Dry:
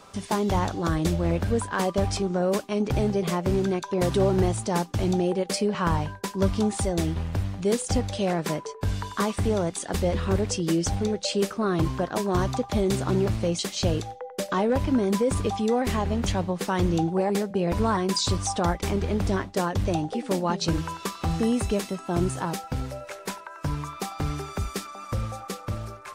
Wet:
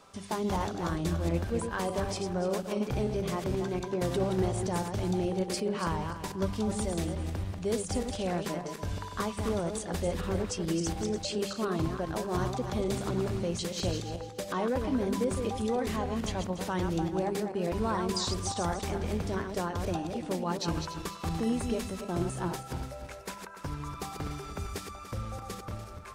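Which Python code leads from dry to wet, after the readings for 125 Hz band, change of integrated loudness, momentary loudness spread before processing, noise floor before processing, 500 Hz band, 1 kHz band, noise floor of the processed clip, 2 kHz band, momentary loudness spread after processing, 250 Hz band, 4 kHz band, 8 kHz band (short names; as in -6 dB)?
-7.0 dB, -6.0 dB, 8 LU, -43 dBFS, -6.0 dB, -6.0 dB, -44 dBFS, -6.0 dB, 8 LU, -6.0 dB, -6.0 dB, -6.0 dB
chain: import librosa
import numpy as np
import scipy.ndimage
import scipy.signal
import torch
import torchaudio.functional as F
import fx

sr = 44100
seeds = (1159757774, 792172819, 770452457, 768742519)

y = fx.reverse_delay_fb(x, sr, ms=146, feedback_pct=46, wet_db=-6.0)
y = fx.hum_notches(y, sr, base_hz=50, count=4)
y = F.gain(torch.from_numpy(y), -7.0).numpy()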